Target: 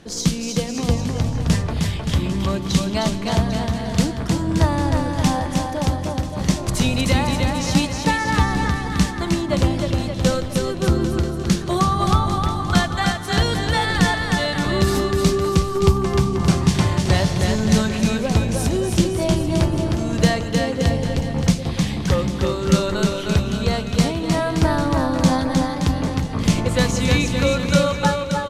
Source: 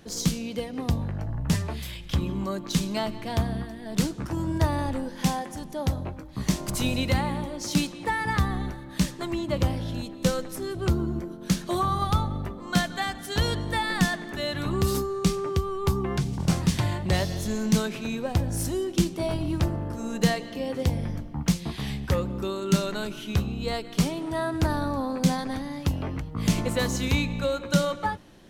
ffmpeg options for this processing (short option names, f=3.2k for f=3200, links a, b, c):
-af "lowpass=9.9k,aecho=1:1:310|573.5|797.5|987.9|1150:0.631|0.398|0.251|0.158|0.1,volume=5.5dB"